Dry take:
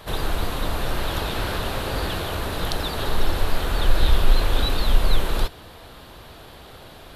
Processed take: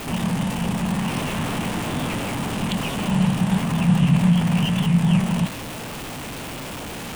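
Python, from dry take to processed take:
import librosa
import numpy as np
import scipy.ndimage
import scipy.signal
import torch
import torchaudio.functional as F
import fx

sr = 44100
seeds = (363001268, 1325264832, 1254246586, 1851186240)

y = x + 0.5 * 10.0 ** (-25.0 / 20.0) * np.sign(x)
y = y * np.sin(2.0 * np.pi * 200.0 * np.arange(len(y)) / sr)
y = fx.formant_shift(y, sr, semitones=-5)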